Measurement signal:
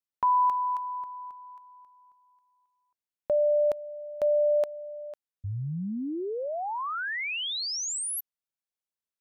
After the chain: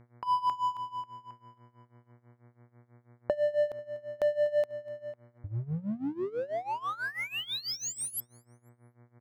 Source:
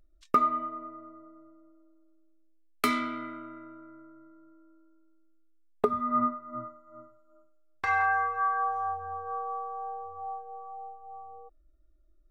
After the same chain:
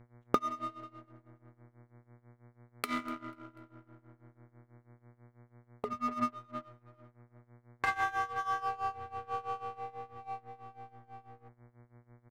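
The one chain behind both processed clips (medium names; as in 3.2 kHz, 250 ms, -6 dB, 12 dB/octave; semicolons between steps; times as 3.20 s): local Wiener filter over 9 samples; compression 6:1, threshold -27 dBFS; on a send: feedback delay 245 ms, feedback 47%, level -21.5 dB; on the sum: power-law waveshaper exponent 1.4; mains buzz 120 Hz, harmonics 19, -62 dBFS -7 dB/octave; tremolo 6.1 Hz, depth 87%; trim +6.5 dB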